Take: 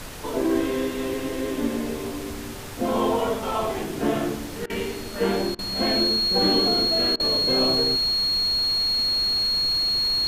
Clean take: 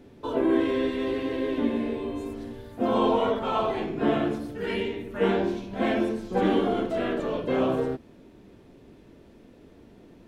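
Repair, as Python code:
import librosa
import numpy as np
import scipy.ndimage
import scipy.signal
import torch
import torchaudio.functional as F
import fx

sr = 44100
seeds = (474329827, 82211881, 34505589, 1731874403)

y = fx.notch(x, sr, hz=4300.0, q=30.0)
y = fx.fix_interpolate(y, sr, at_s=(4.66, 5.55, 7.16), length_ms=37.0)
y = fx.noise_reduce(y, sr, print_start_s=2.29, print_end_s=2.79, reduce_db=19.0)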